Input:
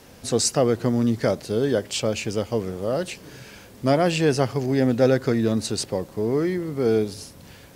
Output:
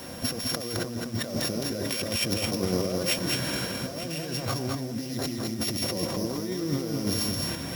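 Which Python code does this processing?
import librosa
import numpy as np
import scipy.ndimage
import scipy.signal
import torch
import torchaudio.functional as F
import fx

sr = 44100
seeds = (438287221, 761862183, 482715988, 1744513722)

p1 = np.r_[np.sort(x[:len(x) // 8 * 8].reshape(-1, 8), axis=1).ravel(), x[len(x) // 8 * 8:]]
p2 = fx.low_shelf(p1, sr, hz=100.0, db=-8.0)
p3 = fx.notch_comb(p2, sr, f0_hz=430.0)
p4 = fx.level_steps(p3, sr, step_db=16)
p5 = p3 + (p4 * 10.0 ** (0.5 / 20.0))
p6 = fx.spec_repair(p5, sr, seeds[0], start_s=5.01, length_s=0.83, low_hz=370.0, high_hz=1800.0, source='both')
p7 = fx.over_compress(p6, sr, threshold_db=-32.0, ratio=-1.0)
p8 = p7 + 10.0 ** (-3.5 / 20.0) * np.pad(p7, (int(213 * sr / 1000.0), 0))[:len(p7)]
p9 = fx.quant_dither(p8, sr, seeds[1], bits=8, dither='none')
y = p9 + fx.echo_single(p9, sr, ms=904, db=-13.5, dry=0)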